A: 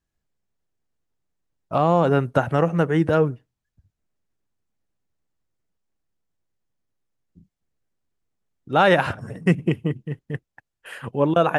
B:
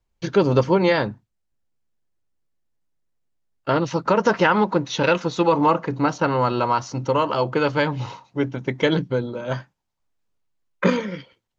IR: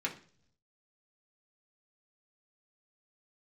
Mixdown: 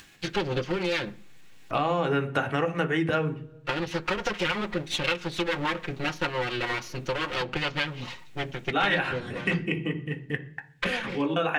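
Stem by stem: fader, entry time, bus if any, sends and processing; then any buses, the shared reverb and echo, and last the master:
−3.5 dB, 0.00 s, send −3 dB, upward compression, threshold −31 dBFS; automatic ducking −11 dB, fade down 0.20 s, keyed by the second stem
−5.0 dB, 0.00 s, send −15.5 dB, lower of the sound and its delayed copy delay 5.6 ms; rotating-speaker cabinet horn 7 Hz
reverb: on, pre-delay 3 ms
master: parametric band 2,900 Hz +10 dB 1.9 octaves; downward compressor 2.5 to 1, threshold −26 dBFS, peak gain reduction 10.5 dB

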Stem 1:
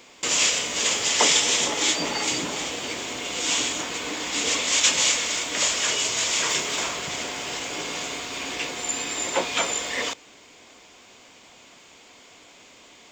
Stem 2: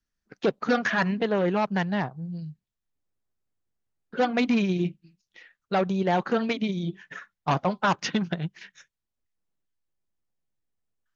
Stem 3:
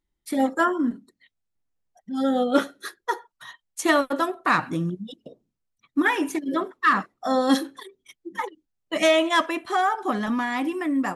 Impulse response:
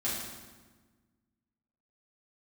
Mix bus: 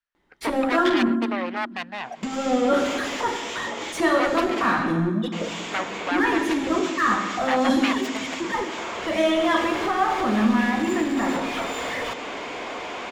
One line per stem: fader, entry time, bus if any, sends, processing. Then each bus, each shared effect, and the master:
+1.5 dB, 2.00 s, muted 0:04.68–0:05.32, bus A, send −12 dB, high-shelf EQ 3,800 Hz −11.5 dB; downward compressor 3 to 1, threshold −33 dBFS, peak gain reduction 11.5 dB; automatic ducking −20 dB, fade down 1.25 s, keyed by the second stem
+1.0 dB, 0.00 s, no bus, no send, phase distortion by the signal itself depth 0.5 ms; three-way crossover with the lows and the highs turned down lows −21 dB, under 570 Hz, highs −17 dB, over 3,700 Hz
−1.0 dB, 0.15 s, bus A, send −6.5 dB, high-shelf EQ 4,600 Hz −9 dB
bus A: 0.0 dB, mid-hump overdrive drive 34 dB, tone 1,200 Hz, clips at −16 dBFS; downward compressor 2.5 to 1, threshold −28 dBFS, peak gain reduction 7.5 dB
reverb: on, RT60 1.4 s, pre-delay 4 ms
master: no processing

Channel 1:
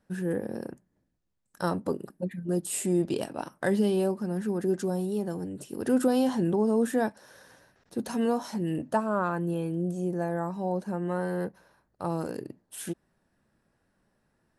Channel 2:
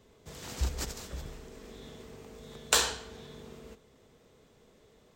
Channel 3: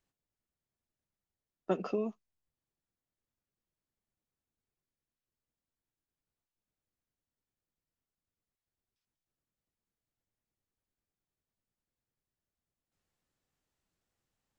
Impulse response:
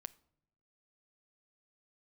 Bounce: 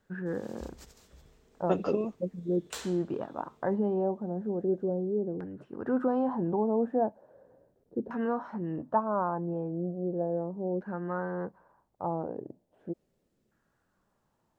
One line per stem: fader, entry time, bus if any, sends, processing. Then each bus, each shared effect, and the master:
−5.0 dB, 0.00 s, no send, auto-filter low-pass saw down 0.37 Hz 410–1,600 Hz
−16.0 dB, 0.00 s, no send, no processing
+2.0 dB, 0.00 s, no send, no processing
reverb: not used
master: no processing

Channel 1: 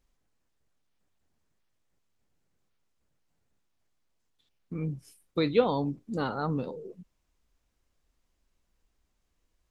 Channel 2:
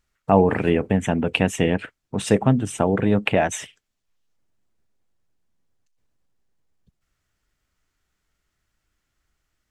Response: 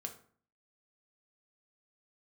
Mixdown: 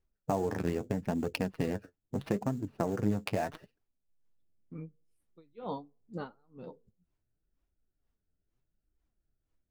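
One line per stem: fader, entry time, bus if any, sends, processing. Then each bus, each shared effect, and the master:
−3.0 dB, 0.00 s, send −20.5 dB, tremolo with a sine in dB 2.1 Hz, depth 37 dB
−1.5 dB, 0.00 s, no send, adaptive Wiener filter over 41 samples; downward compressor 4 to 1, threshold −22 dBFS, peak gain reduction 11 dB; sample-rate reduction 7,300 Hz, jitter 20%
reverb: on, RT60 0.50 s, pre-delay 3 ms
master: flanger 0.78 Hz, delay 2.1 ms, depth 9.5 ms, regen +40%; high-shelf EQ 3,500 Hz −9 dB

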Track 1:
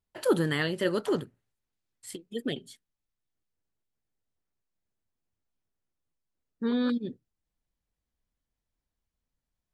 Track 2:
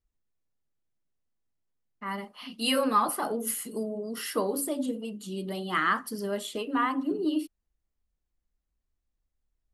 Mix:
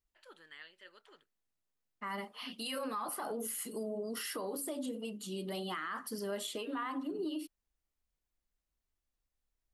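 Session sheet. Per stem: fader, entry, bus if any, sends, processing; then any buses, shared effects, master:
−19.0 dB, 0.00 s, no send, resonant band-pass 2,400 Hz, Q 0.89
−0.5 dB, 0.00 s, no send, downward compressor, threshold −28 dBFS, peak gain reduction 9.5 dB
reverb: not used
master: low-shelf EQ 330 Hz −7 dB; brickwall limiter −30.5 dBFS, peak gain reduction 10 dB

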